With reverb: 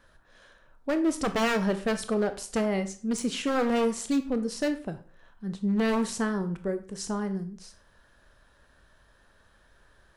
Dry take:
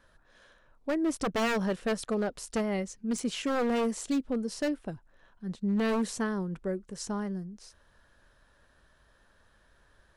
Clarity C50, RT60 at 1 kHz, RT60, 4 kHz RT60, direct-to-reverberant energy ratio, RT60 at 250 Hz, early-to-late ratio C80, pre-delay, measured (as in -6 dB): 13.0 dB, 0.40 s, 0.40 s, 0.35 s, 9.0 dB, 0.40 s, 17.5 dB, 19 ms